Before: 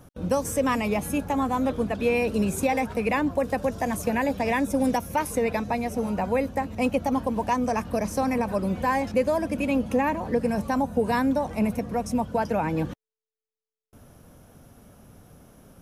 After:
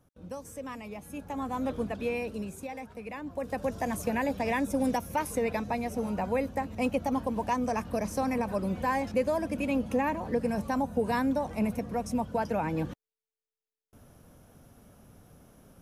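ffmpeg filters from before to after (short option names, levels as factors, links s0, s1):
-af "volume=1.88,afade=t=in:st=1.06:d=0.71:silence=0.298538,afade=t=out:st=1.77:d=0.82:silence=0.316228,afade=t=in:st=3.22:d=0.49:silence=0.281838"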